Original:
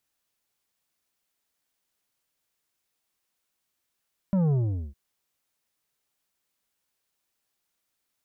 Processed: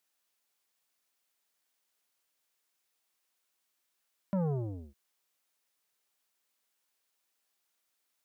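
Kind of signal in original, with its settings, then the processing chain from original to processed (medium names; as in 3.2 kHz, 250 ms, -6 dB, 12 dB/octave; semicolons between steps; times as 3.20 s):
sub drop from 200 Hz, over 0.61 s, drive 8.5 dB, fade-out 0.42 s, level -21 dB
high-pass 390 Hz 6 dB/octave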